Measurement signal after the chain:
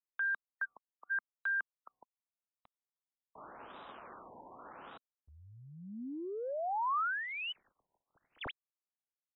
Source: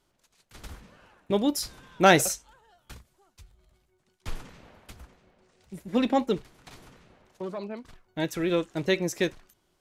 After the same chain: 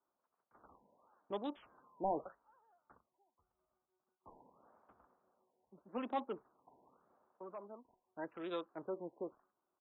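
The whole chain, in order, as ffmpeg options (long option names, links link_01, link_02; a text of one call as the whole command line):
ffmpeg -i in.wav -filter_complex "[0:a]firequalizer=gain_entry='entry(150,0);entry(240,7);entry(450,7);entry(1200,9);entry(2000,-8);entry(3100,-7);entry(6400,-10);entry(14000,-3)':delay=0.05:min_phase=1,aeval=exprs='1.33*(cos(1*acos(clip(val(0)/1.33,-1,1)))-cos(1*PI/2))+0.0168*(cos(3*acos(clip(val(0)/1.33,-1,1)))-cos(3*PI/2))':channel_layout=same,acrossover=split=260|1400[link_01][link_02][link_03];[link_01]acontrast=21[link_04];[link_03]aeval=exprs='val(0)*gte(abs(val(0)),0.0106)':channel_layout=same[link_05];[link_04][link_02][link_05]amix=inputs=3:normalize=0,aderivative,asoftclip=type=tanh:threshold=-29dB,afftfilt=real='re*lt(b*sr/1024,1000*pow(4000/1000,0.5+0.5*sin(2*PI*0.85*pts/sr)))':imag='im*lt(b*sr/1024,1000*pow(4000/1000,0.5+0.5*sin(2*PI*0.85*pts/sr)))':win_size=1024:overlap=0.75,volume=1.5dB" out.wav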